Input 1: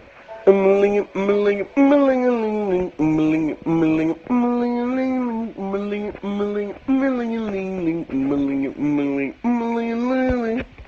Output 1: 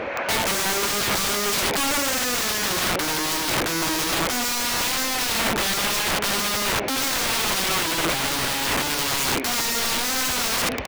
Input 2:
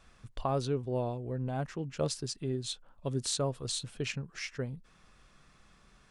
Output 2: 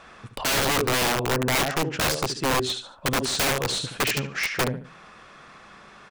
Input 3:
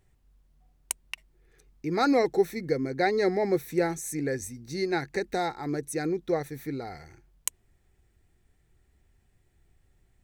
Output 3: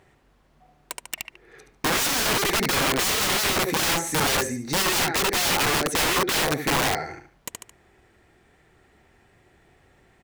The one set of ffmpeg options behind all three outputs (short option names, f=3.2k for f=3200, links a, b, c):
-filter_complex "[0:a]aecho=1:1:73|146|219:0.355|0.103|0.0298,asplit=2[a][b];[b]highpass=f=720:p=1,volume=32dB,asoftclip=type=tanh:threshold=-1dB[c];[a][c]amix=inputs=2:normalize=0,lowpass=f=1.3k:p=1,volume=-6dB,aeval=exprs='(mod(4.73*val(0)+1,2)-1)/4.73':c=same,volume=-4dB"